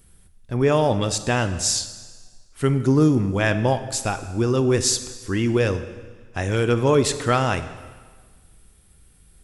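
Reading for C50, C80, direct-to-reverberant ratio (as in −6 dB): 12.0 dB, 13.5 dB, 10.0 dB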